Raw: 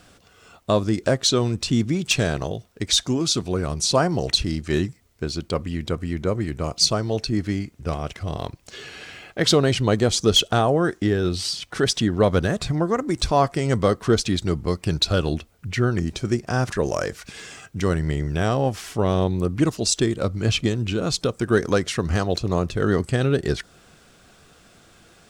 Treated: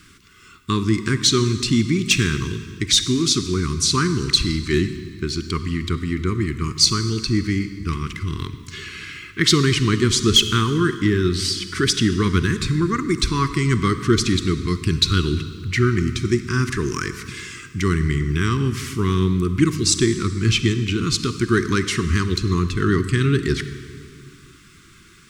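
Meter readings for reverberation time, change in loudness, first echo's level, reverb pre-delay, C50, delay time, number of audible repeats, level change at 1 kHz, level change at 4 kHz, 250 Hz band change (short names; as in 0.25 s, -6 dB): 2.1 s, +2.5 dB, none, 35 ms, 11.0 dB, none, none, -0.5 dB, +3.5 dB, +3.5 dB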